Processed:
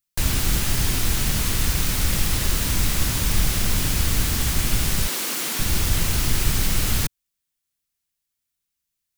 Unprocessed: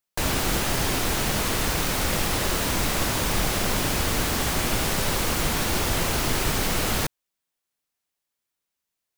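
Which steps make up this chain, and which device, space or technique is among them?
5.07–5.59 HPF 260 Hz 24 dB/oct; smiley-face EQ (low shelf 150 Hz +8.5 dB; bell 610 Hz -9 dB 2.2 oct; high shelf 5500 Hz +4 dB)

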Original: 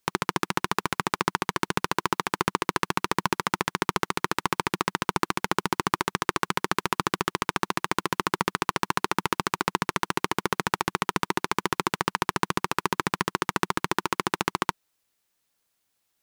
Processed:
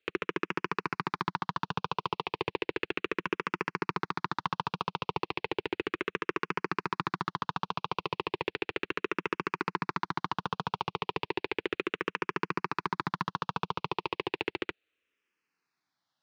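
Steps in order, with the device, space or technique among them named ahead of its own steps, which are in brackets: barber-pole phaser into a guitar amplifier (endless phaser -0.34 Hz; soft clip -18.5 dBFS, distortion -9 dB; speaker cabinet 100–4600 Hz, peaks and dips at 210 Hz -5 dB, 450 Hz +4 dB, 2600 Hz +7 dB)

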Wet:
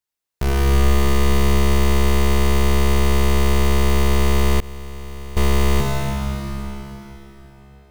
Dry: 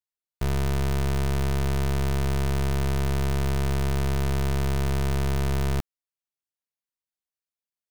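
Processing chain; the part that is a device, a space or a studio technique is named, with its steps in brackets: cathedral (reverb RT60 4.2 s, pre-delay 13 ms, DRR -3.5 dB); 4.6–5.37 expander -8 dBFS; gain +5.5 dB

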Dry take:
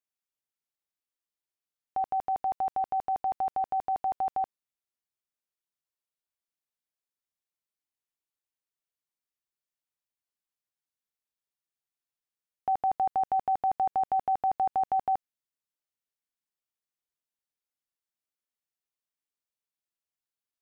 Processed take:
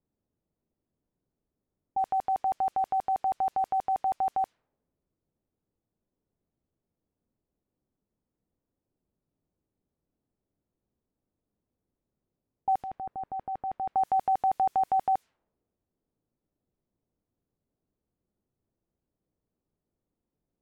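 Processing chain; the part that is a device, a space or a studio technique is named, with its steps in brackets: 12.75–13.94 bell 820 Hz -13 dB -> -6.5 dB 1.9 oct; cassette deck with a dynamic noise filter (white noise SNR 33 dB; low-pass opened by the level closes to 320 Hz, open at -25.5 dBFS); gain +1.5 dB

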